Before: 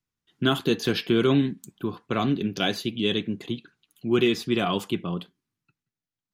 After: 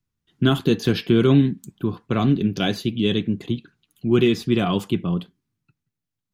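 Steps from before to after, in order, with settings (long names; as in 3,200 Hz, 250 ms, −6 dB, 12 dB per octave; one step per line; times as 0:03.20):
low-shelf EQ 240 Hz +11.5 dB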